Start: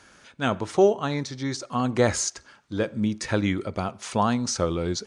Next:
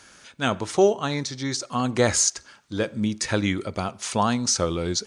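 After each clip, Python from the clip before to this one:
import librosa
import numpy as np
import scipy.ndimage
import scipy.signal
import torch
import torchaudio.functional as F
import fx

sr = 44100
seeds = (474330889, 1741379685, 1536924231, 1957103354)

y = fx.high_shelf(x, sr, hz=3000.0, db=8.0)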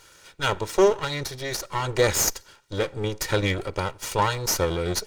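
y = fx.lower_of_two(x, sr, delay_ms=2.1)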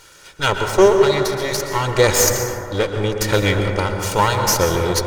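y = fx.rev_plate(x, sr, seeds[0], rt60_s=2.7, hf_ratio=0.25, predelay_ms=105, drr_db=4.0)
y = F.gain(torch.from_numpy(y), 6.0).numpy()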